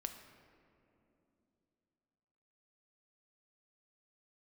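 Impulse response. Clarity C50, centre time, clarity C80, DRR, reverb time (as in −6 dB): 8.0 dB, 29 ms, 9.0 dB, 6.0 dB, 2.9 s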